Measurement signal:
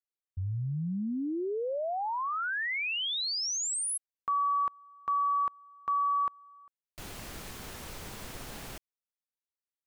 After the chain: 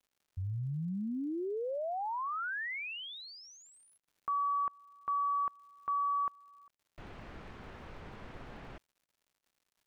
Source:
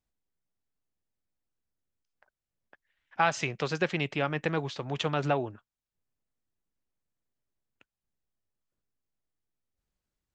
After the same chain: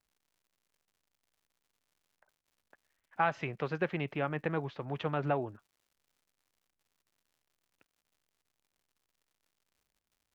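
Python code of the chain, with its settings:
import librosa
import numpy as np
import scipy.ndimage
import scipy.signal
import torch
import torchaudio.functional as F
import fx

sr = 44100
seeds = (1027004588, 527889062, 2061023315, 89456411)

y = scipy.signal.sosfilt(scipy.signal.butter(2, 2100.0, 'lowpass', fs=sr, output='sos'), x)
y = fx.dmg_crackle(y, sr, seeds[0], per_s=170.0, level_db=-58.0)
y = F.gain(torch.from_numpy(y), -3.5).numpy()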